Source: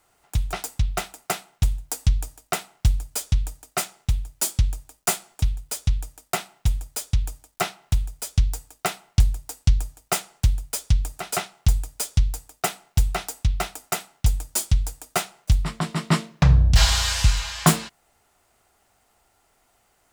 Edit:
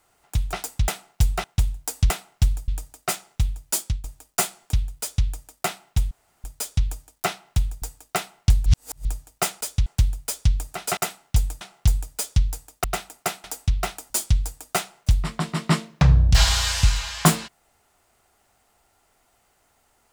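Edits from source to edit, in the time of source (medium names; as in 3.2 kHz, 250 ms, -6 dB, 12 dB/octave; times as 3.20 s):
0.88–1.48 s: swap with 12.65–13.21 s
2.14–2.53 s: delete
3.11–3.37 s: delete
4.45–4.73 s: fade out, to -16.5 dB
5.70–5.95 s: copy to 10.31 s
6.80 s: insert room tone 0.33 s
8.18–8.52 s: delete
9.36–9.75 s: reverse
13.87–14.51 s: move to 11.42 s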